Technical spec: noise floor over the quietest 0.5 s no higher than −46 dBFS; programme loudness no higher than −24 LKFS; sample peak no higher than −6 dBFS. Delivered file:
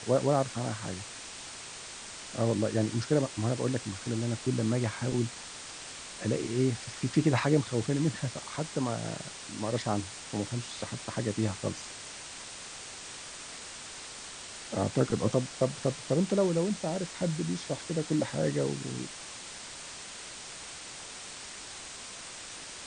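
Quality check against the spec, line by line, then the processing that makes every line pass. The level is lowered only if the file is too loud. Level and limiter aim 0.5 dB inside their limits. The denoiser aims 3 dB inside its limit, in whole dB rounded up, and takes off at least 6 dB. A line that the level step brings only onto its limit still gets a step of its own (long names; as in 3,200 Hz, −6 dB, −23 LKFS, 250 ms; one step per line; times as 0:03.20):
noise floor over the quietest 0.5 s −44 dBFS: out of spec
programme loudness −32.5 LKFS: in spec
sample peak −12.5 dBFS: in spec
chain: broadband denoise 6 dB, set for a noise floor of −44 dBFS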